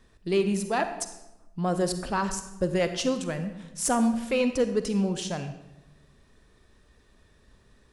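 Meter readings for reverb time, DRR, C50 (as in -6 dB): 1.0 s, 9.0 dB, 10.0 dB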